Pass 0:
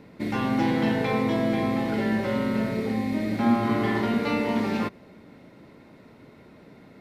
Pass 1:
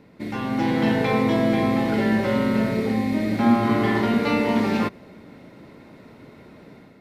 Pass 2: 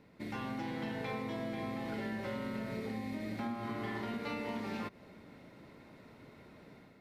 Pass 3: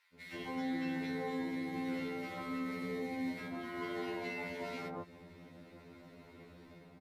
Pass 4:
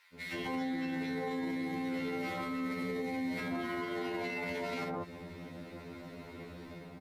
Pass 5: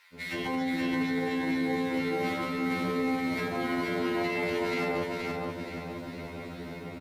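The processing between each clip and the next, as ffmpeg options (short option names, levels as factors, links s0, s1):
-af "dynaudnorm=f=450:g=3:m=2.24,volume=0.75"
-af "acompressor=threshold=0.0501:ratio=6,equalizer=f=280:t=o:w=2.4:g=-3.5,volume=0.422"
-filter_complex "[0:a]acrossover=split=1300[s0][s1];[s0]adelay=140[s2];[s2][s1]amix=inputs=2:normalize=0,afftfilt=real='re*2*eq(mod(b,4),0)':imag='im*2*eq(mod(b,4),0)':win_size=2048:overlap=0.75,volume=1.33"
-af "alimiter=level_in=4.73:limit=0.0631:level=0:latency=1:release=36,volume=0.211,volume=2.66"
-af "aecho=1:1:474|948|1422|1896|2370:0.708|0.297|0.125|0.0525|0.022,volume=1.78"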